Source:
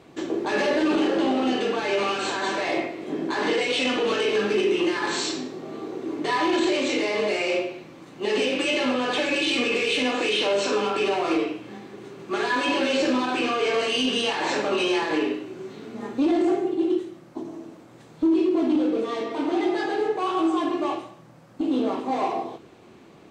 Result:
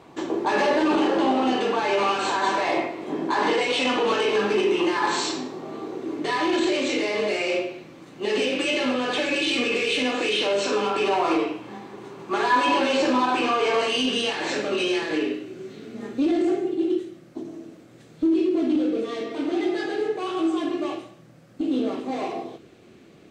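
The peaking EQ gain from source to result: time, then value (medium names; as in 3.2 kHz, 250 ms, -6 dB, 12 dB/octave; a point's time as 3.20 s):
peaking EQ 940 Hz 0.68 oct
5.52 s +8 dB
6.27 s -2 dB
10.62 s -2 dB
11.22 s +8 dB
13.80 s +8 dB
14.19 s -3 dB
14.63 s -10 dB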